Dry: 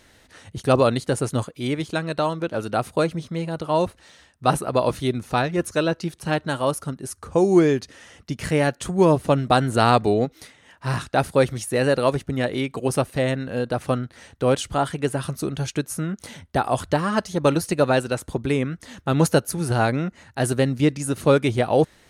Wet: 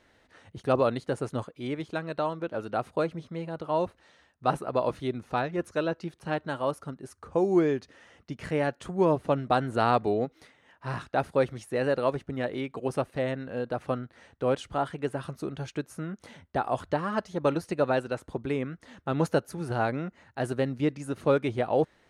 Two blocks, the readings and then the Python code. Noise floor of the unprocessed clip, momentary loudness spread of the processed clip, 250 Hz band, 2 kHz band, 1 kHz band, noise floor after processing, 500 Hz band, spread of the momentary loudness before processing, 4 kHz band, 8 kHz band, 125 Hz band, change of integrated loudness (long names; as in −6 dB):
−56 dBFS, 11 LU, −8.0 dB, −8.0 dB, −6.0 dB, −66 dBFS, −6.0 dB, 10 LU, −11.5 dB, below −15 dB, −10.0 dB, −7.0 dB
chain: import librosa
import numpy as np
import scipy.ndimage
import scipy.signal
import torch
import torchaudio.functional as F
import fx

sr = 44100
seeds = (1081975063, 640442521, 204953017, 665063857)

y = fx.lowpass(x, sr, hz=1700.0, slope=6)
y = fx.low_shelf(y, sr, hz=230.0, db=-7.5)
y = y * 10.0 ** (-4.5 / 20.0)